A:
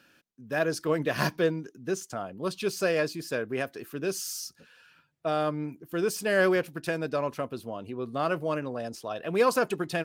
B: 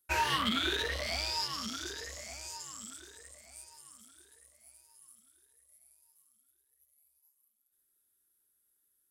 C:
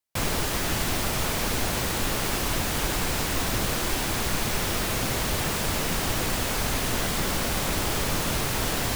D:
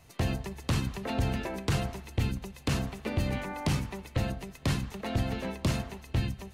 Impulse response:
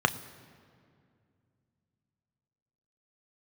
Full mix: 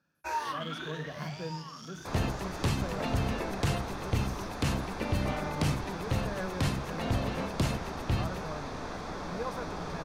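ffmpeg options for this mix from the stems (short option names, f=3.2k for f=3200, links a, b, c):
-filter_complex "[0:a]lowshelf=f=220:t=q:w=1.5:g=10,acrusher=bits=9:mode=log:mix=0:aa=0.000001,volume=-19dB,asplit=3[a][b][c];[b]volume=-12.5dB[d];[1:a]equalizer=f=86:t=o:w=1.7:g=-12,adelay=150,volume=-7.5dB,asplit=2[e][f];[f]volume=-12dB[g];[2:a]lowpass=4.3k,adelay=1900,volume=-13.5dB,asplit=2[h][i];[i]volume=-13dB[j];[3:a]adelay=1950,volume=-1dB[k];[c]apad=whole_len=408221[l];[e][l]sidechaincompress=threshold=-50dB:ratio=8:attack=16:release=493[m];[4:a]atrim=start_sample=2205[n];[d][g][j]amix=inputs=3:normalize=0[o];[o][n]afir=irnorm=-1:irlink=0[p];[a][m][h][k][p]amix=inputs=5:normalize=0"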